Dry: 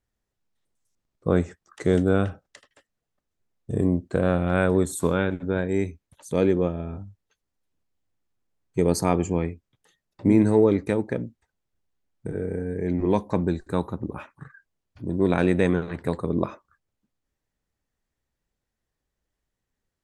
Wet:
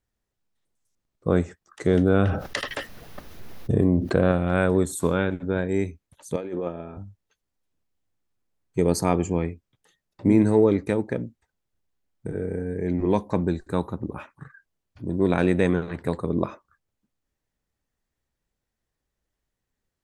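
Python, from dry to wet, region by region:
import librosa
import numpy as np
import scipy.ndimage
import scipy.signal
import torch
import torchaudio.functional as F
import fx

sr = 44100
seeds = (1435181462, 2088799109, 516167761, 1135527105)

y = fx.chain(x, sr, fx.peak_eq(hz=7700.0, db=-12.0, octaves=0.53),
    fx.env_flatten(amount_pct=70), at=(1.87, 4.32))
y = fx.chain(y, sr, fx.high_shelf(hz=3300.0, db=-10.0),
    fx.over_compress(threshold_db=-23.0, ratio=-0.5),
    fx.highpass(hz=520.0, slope=6), at=(6.36, 6.97))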